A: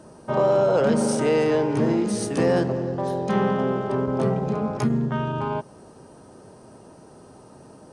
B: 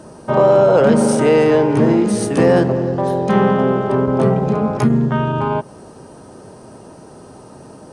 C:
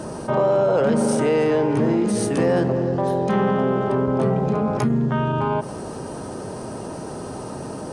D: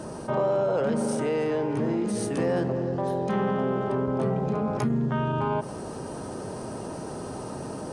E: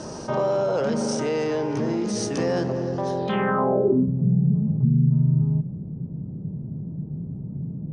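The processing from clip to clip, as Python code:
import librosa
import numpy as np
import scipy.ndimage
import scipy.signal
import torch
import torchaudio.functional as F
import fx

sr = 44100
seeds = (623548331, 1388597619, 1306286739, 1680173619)

y1 = fx.dynamic_eq(x, sr, hz=5500.0, q=0.99, threshold_db=-48.0, ratio=4.0, max_db=-5)
y1 = F.gain(torch.from_numpy(y1), 8.0).numpy()
y2 = fx.env_flatten(y1, sr, amount_pct=50)
y2 = F.gain(torch.from_numpy(y2), -7.5).numpy()
y3 = fx.rider(y2, sr, range_db=3, speed_s=2.0)
y3 = F.gain(torch.from_numpy(y3), -6.5).numpy()
y4 = fx.filter_sweep_lowpass(y3, sr, from_hz=5800.0, to_hz=160.0, start_s=3.16, end_s=4.12, q=4.1)
y4 = F.gain(torch.from_numpy(y4), 1.5).numpy()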